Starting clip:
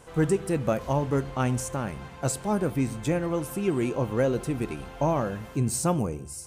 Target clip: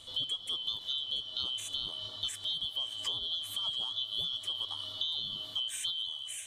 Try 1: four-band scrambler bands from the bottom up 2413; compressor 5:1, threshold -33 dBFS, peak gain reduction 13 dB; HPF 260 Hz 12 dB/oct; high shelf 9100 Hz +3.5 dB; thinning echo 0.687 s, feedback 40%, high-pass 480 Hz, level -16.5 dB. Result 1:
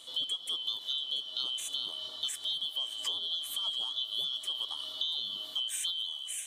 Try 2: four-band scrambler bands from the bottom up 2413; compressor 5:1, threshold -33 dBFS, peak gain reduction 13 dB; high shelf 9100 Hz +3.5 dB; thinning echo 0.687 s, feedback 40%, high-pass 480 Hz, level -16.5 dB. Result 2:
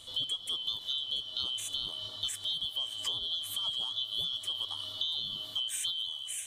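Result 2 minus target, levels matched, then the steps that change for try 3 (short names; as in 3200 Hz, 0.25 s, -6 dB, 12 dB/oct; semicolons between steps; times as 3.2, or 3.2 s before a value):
8000 Hz band +3.0 dB
change: high shelf 9100 Hz -5 dB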